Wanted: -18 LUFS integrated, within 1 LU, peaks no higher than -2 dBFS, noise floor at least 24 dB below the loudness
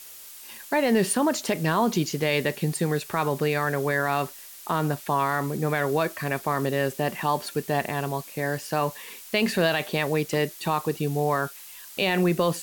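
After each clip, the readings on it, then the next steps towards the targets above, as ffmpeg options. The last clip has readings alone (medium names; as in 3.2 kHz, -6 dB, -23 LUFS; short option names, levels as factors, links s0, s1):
noise floor -44 dBFS; noise floor target -50 dBFS; loudness -25.5 LUFS; peak level -12.0 dBFS; loudness target -18.0 LUFS
-> -af "afftdn=nr=6:nf=-44"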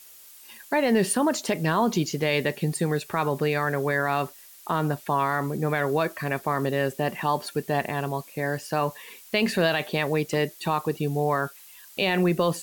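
noise floor -49 dBFS; noise floor target -50 dBFS
-> -af "afftdn=nr=6:nf=-49"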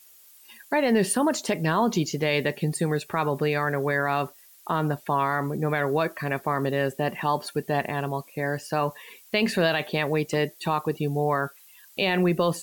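noise floor -53 dBFS; loudness -26.0 LUFS; peak level -12.5 dBFS; loudness target -18.0 LUFS
-> -af "volume=2.51"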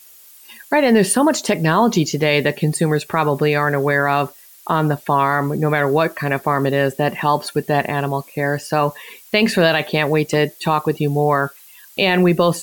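loudness -18.0 LUFS; peak level -4.5 dBFS; noise floor -45 dBFS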